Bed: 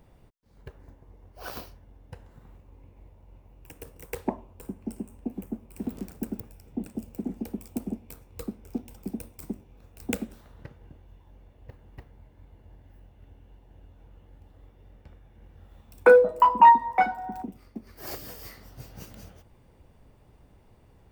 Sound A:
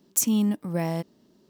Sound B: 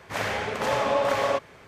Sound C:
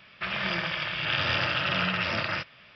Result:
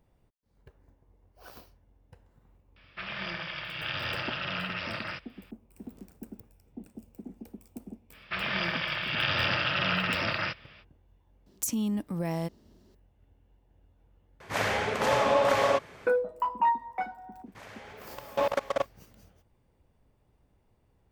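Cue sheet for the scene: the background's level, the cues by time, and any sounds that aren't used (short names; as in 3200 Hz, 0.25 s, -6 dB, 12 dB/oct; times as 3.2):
bed -11 dB
2.76 add C -7 dB
8.1 add C -1 dB, fades 0.05 s + HPF 41 Hz
11.46 add A -1 dB + compressor 4:1, threshold -26 dBFS
14.4 replace with B
17.46 add B -1.5 dB + level quantiser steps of 23 dB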